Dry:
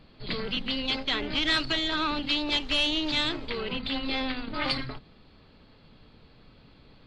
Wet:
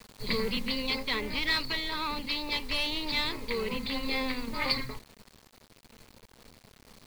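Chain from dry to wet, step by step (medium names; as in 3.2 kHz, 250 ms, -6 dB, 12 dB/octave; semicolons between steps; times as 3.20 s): rippled EQ curve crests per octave 0.91, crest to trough 10 dB; bit crusher 8-bit; modulation noise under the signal 25 dB; gain riding 2 s; trim -3.5 dB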